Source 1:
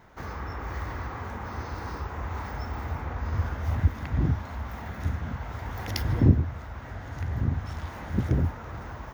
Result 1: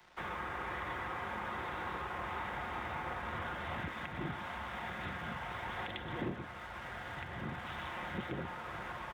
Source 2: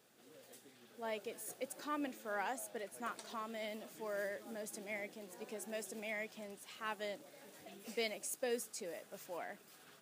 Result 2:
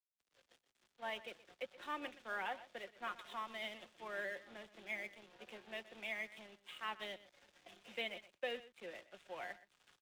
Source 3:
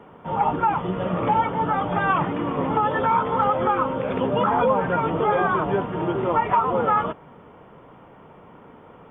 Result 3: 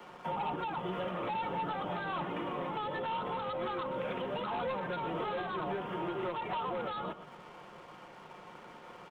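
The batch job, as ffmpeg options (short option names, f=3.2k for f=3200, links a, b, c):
-filter_complex "[0:a]lowshelf=f=380:g=-9.5,aecho=1:1:5.6:0.44,aresample=8000,asoftclip=type=tanh:threshold=-21.5dB,aresample=44100,highshelf=f=2.6k:g=10,aeval=exprs='sgn(val(0))*max(abs(val(0))-0.00133,0)':c=same,asplit=2[a][b];[b]aecho=0:1:123:0.141[c];[a][c]amix=inputs=2:normalize=0,acrossover=split=80|170|340|740[d][e][f][g][h];[d]acompressor=threshold=-58dB:ratio=4[i];[e]acompressor=threshold=-49dB:ratio=4[j];[f]acompressor=threshold=-40dB:ratio=4[k];[g]acompressor=threshold=-37dB:ratio=4[l];[h]acompressor=threshold=-39dB:ratio=4[m];[i][j][k][l][m]amix=inputs=5:normalize=0,alimiter=level_in=3dB:limit=-24dB:level=0:latency=1:release=432,volume=-3dB"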